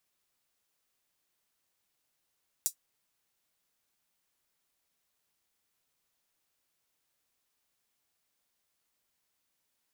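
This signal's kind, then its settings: closed hi-hat, high-pass 6700 Hz, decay 0.10 s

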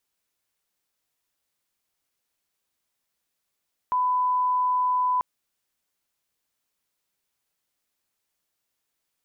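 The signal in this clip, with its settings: line-up tone -20 dBFS 1.29 s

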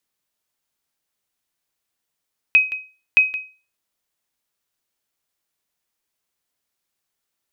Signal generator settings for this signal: sonar ping 2530 Hz, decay 0.34 s, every 0.62 s, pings 2, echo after 0.17 s, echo -15 dB -5.5 dBFS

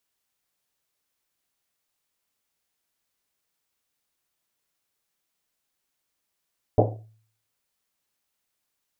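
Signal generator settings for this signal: Risset drum, pitch 110 Hz, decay 0.57 s, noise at 520 Hz, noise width 450 Hz, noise 55%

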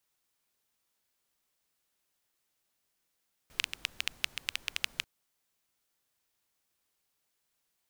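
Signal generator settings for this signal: rain from filtered ticks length 1.54 s, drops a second 8.8, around 2700 Hz, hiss -19.5 dB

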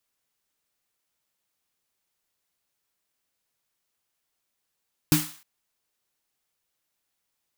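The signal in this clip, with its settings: snare drum length 0.31 s, tones 160 Hz, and 300 Hz, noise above 790 Hz, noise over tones -5 dB, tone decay 0.26 s, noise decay 0.48 s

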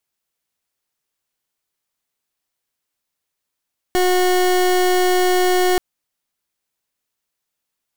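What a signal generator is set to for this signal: pulse 364 Hz, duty 29% -15.5 dBFS 1.83 s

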